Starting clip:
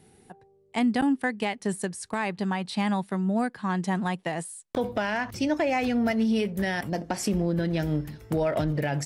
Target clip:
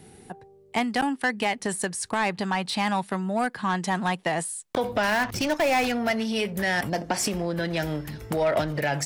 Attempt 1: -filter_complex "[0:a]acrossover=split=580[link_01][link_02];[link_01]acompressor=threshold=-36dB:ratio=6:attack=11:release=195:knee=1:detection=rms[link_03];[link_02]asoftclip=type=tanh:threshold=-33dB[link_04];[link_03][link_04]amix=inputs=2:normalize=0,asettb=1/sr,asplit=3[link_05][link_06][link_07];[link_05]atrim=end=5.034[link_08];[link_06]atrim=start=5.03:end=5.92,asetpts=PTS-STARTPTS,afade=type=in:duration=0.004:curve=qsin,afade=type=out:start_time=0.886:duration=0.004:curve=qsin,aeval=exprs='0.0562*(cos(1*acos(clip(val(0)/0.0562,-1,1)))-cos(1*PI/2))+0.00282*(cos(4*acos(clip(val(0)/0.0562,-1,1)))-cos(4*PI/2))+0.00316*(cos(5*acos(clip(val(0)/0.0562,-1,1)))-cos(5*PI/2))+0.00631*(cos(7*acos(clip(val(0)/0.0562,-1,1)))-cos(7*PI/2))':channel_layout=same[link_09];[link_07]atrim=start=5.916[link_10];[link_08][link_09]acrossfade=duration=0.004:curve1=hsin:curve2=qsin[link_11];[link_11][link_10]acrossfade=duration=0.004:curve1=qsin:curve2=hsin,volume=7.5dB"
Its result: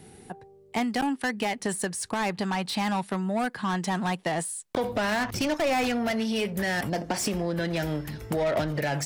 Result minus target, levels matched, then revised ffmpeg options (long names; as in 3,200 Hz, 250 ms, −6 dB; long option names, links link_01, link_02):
soft clipping: distortion +7 dB
-filter_complex "[0:a]acrossover=split=580[link_01][link_02];[link_01]acompressor=threshold=-36dB:ratio=6:attack=11:release=195:knee=1:detection=rms[link_03];[link_02]asoftclip=type=tanh:threshold=-25.5dB[link_04];[link_03][link_04]amix=inputs=2:normalize=0,asettb=1/sr,asplit=3[link_05][link_06][link_07];[link_05]atrim=end=5.034[link_08];[link_06]atrim=start=5.03:end=5.92,asetpts=PTS-STARTPTS,afade=type=in:duration=0.004:curve=qsin,afade=type=out:start_time=0.886:duration=0.004:curve=qsin,aeval=exprs='0.0562*(cos(1*acos(clip(val(0)/0.0562,-1,1)))-cos(1*PI/2))+0.00282*(cos(4*acos(clip(val(0)/0.0562,-1,1)))-cos(4*PI/2))+0.00316*(cos(5*acos(clip(val(0)/0.0562,-1,1)))-cos(5*PI/2))+0.00631*(cos(7*acos(clip(val(0)/0.0562,-1,1)))-cos(7*PI/2))':channel_layout=same[link_09];[link_07]atrim=start=5.916[link_10];[link_08][link_09]acrossfade=duration=0.004:curve1=hsin:curve2=qsin[link_11];[link_11][link_10]acrossfade=duration=0.004:curve1=qsin:curve2=hsin,volume=7.5dB"